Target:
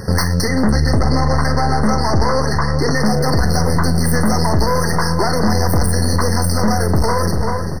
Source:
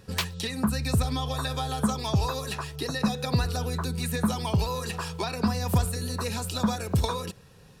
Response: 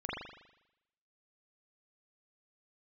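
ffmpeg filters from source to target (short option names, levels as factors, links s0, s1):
-filter_complex "[0:a]asettb=1/sr,asplit=3[s0][s1][s2];[s0]atrim=end=0.454[s3];[s1]atrim=start=0.45:end=2.97,asetpts=PTS-STARTPTS,afade=t=in:d=0.004:c=qsin,afade=t=out:st=2.516:d=0.004:c=qsin,lowpass=5400[s4];[s2]atrim=start=2.966[s5];[s3][s4]acrossfade=d=0.004:c1=hsin:c2=qsin[s6];[s6][s5]acrossfade=d=0.004:c1=qsin:c2=hsin,aeval=exprs='(tanh(39.8*val(0)+0.7)-tanh(0.7))/39.8':c=same,asplit=2[s7][s8];[s8]adelay=42,volume=0.266[s9];[s7][s9]amix=inputs=2:normalize=0,asplit=2[s10][s11];[s11]adelay=390,lowpass=f=3500:p=1,volume=0.251,asplit=2[s12][s13];[s13]adelay=390,lowpass=f=3500:p=1,volume=0.45,asplit=2[s14][s15];[s15]adelay=390,lowpass=f=3500:p=1,volume=0.45,asplit=2[s16][s17];[s17]adelay=390,lowpass=f=3500:p=1,volume=0.45,asplit=2[s18][s19];[s19]adelay=390,lowpass=f=3500:p=1,volume=0.45[s20];[s10][s12][s14][s16][s18][s20]amix=inputs=6:normalize=0,alimiter=level_in=42.2:limit=0.891:release=50:level=0:latency=1,afftfilt=real='re*eq(mod(floor(b*sr/1024/2100),2),0)':imag='im*eq(mod(floor(b*sr/1024/2100),2),0)':win_size=1024:overlap=0.75,volume=0.531"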